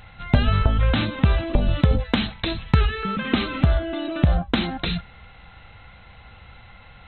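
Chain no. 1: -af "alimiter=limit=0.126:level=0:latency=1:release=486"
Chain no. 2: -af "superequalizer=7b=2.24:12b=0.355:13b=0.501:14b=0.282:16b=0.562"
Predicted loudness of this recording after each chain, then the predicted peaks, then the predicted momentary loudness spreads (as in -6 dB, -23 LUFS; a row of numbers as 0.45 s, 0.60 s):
-30.5 LUFS, -22.5 LUFS; -18.0 dBFS, -5.0 dBFS; 18 LU, 8 LU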